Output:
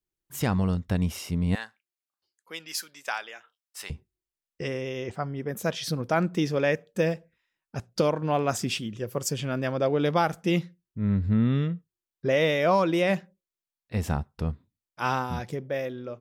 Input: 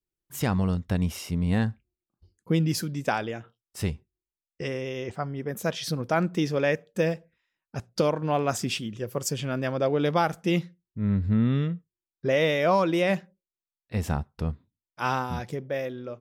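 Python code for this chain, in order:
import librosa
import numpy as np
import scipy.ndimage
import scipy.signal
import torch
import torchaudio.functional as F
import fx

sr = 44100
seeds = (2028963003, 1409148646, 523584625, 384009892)

y = fx.highpass(x, sr, hz=1100.0, slope=12, at=(1.55, 3.9))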